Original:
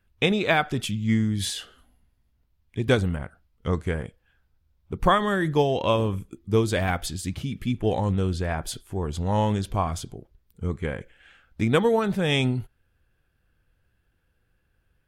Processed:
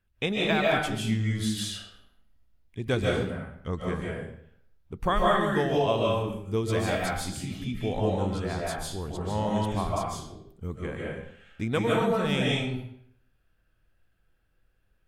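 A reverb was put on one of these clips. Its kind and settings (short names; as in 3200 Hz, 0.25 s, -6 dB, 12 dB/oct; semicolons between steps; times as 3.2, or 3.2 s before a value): digital reverb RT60 0.68 s, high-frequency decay 0.85×, pre-delay 0.11 s, DRR -4 dB; gain -7 dB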